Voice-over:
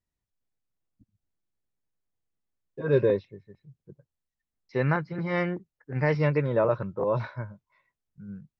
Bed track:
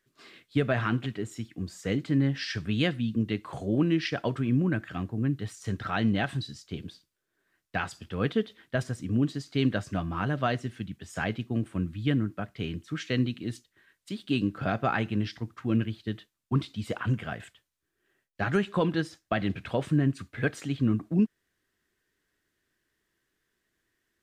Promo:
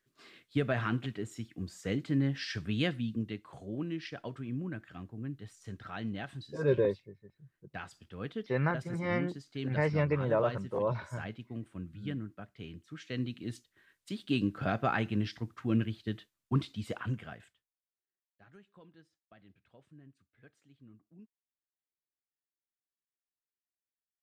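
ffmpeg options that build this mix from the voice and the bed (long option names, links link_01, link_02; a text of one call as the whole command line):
ffmpeg -i stem1.wav -i stem2.wav -filter_complex "[0:a]adelay=3750,volume=-5dB[link_01];[1:a]volume=4.5dB,afade=type=out:start_time=2.97:duration=0.48:silence=0.421697,afade=type=in:start_time=13.01:duration=0.72:silence=0.354813,afade=type=out:start_time=16.64:duration=1.12:silence=0.0375837[link_02];[link_01][link_02]amix=inputs=2:normalize=0" out.wav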